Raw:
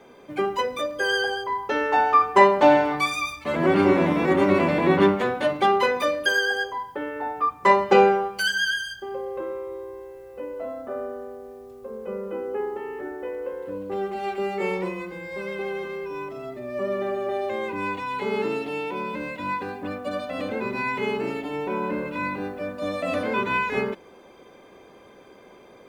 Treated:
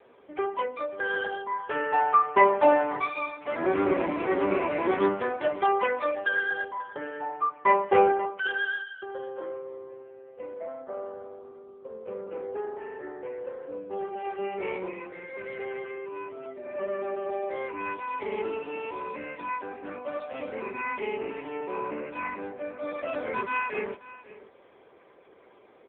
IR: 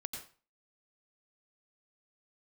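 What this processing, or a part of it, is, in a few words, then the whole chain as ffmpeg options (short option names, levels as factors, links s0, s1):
satellite phone: -filter_complex "[0:a]asettb=1/sr,asplit=3[s0][s1][s2];[s0]atrim=end=10.514[s3];[s1]atrim=start=10.51:end=12.31,asetpts=PTS-STARTPTS,afade=t=in:d=0.004:c=qsin,afade=t=out:st=1.796:d=0.004:c=qsin,equalizer=f=65:t=o:w=1.8:g=2[s4];[s2]atrim=start=12.306[s5];[s3][s4]acrossfade=d=0.004:c1=hsin:c2=qsin[s6];[s6][s5]acrossfade=d=0.004:c1=qsin:c2=hsin,highpass=320,lowpass=3300,aecho=1:1:536:0.126,volume=0.708" -ar 8000 -c:a libopencore_amrnb -b:a 6700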